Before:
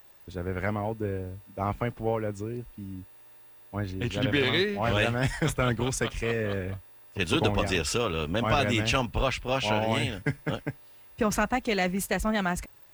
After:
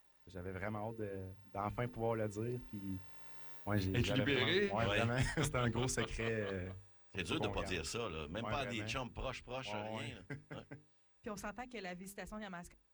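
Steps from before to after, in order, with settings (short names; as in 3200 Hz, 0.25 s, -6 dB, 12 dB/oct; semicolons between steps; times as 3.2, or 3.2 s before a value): Doppler pass-by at 4, 6 m/s, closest 1.5 m; notches 50/100/150/200/250/300/350/400/450 Hz; reverse; compressor 12:1, threshold -41 dBFS, peak gain reduction 17.5 dB; reverse; gain +10.5 dB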